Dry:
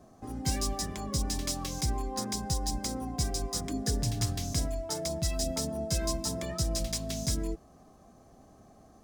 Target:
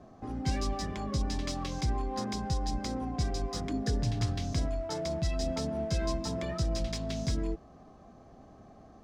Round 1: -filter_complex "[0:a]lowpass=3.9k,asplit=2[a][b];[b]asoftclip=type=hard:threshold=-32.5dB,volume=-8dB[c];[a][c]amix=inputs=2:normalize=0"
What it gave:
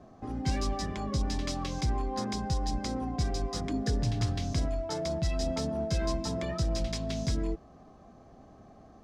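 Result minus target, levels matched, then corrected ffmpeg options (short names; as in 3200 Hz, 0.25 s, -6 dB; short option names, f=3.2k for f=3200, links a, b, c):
hard clip: distortion -5 dB
-filter_complex "[0:a]lowpass=3.9k,asplit=2[a][b];[b]asoftclip=type=hard:threshold=-41.5dB,volume=-8dB[c];[a][c]amix=inputs=2:normalize=0"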